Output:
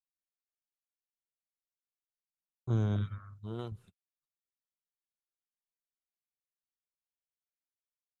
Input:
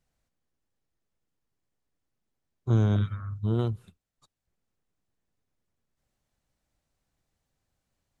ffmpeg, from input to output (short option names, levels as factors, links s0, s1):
-filter_complex "[0:a]agate=range=0.0251:threshold=0.00447:ratio=16:detection=peak,asettb=1/sr,asplit=3[s0][s1][s2];[s0]atrim=end=3.184[s3];[s1]atrim=start=3.18:end=3.72,asetpts=PTS-STARTPTS,afade=t=in:d=0.004:c=qsin,afade=t=out:st=0.536:d=0.004:c=qsin,lowshelf=f=330:g=-9.5[s4];[s2]atrim=start=3.716[s5];[s3][s4]acrossfade=d=0.004:c1=hsin:c2=qsin[s6];[s6][s5]acrossfade=d=0.004:c1=qsin:c2=hsin,volume=0.447"